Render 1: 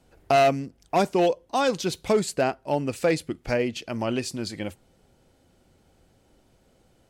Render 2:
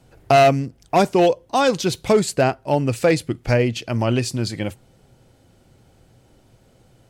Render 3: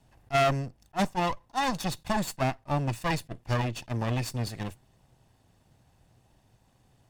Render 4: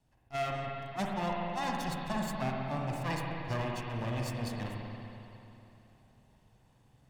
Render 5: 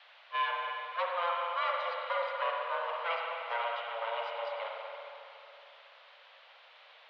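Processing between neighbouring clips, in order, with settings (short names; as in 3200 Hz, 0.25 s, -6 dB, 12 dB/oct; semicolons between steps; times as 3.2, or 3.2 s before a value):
bell 120 Hz +10 dB 0.4 oct; gain +5.5 dB
minimum comb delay 1.1 ms; attack slew limiter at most 560 dB/s; gain -8 dB
vocal rider 0.5 s; spring tank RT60 3 s, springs 46/59 ms, chirp 50 ms, DRR -1.5 dB; gain -9 dB
added noise white -52 dBFS; mistuned SSB +340 Hz 200–3300 Hz; gain +2.5 dB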